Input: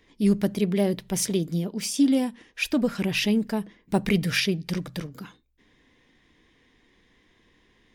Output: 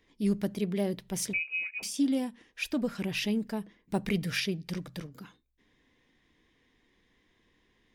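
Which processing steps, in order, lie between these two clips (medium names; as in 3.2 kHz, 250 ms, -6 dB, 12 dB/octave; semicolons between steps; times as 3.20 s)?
1.33–1.83 s: frequency inversion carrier 2.7 kHz; trim -7 dB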